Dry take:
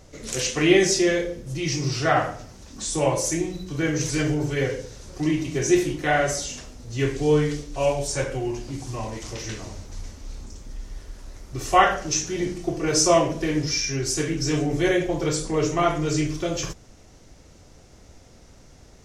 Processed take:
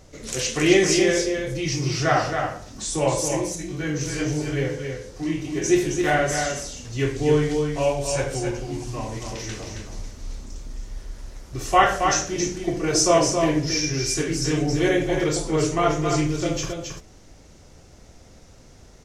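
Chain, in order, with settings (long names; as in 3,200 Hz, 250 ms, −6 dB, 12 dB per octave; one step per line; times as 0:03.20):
0:03.28–0:05.64: chorus effect 1.7 Hz, delay 19.5 ms, depth 4.4 ms
single-tap delay 271 ms −5.5 dB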